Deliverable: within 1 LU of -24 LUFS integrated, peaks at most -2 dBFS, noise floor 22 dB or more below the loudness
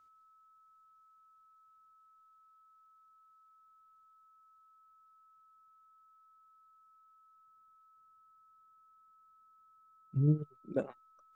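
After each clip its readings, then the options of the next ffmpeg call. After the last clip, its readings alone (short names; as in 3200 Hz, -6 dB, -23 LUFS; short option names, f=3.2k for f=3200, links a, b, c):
steady tone 1300 Hz; tone level -62 dBFS; loudness -34.5 LUFS; peak -17.5 dBFS; loudness target -24.0 LUFS
-> -af "bandreject=f=1.3k:w=30"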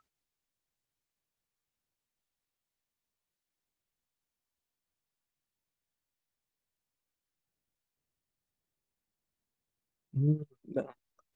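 steady tone none; loudness -34.0 LUFS; peak -17.5 dBFS; loudness target -24.0 LUFS
-> -af "volume=10dB"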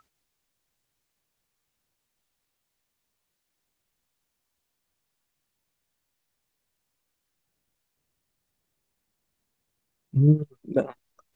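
loudness -24.0 LUFS; peak -7.5 dBFS; noise floor -80 dBFS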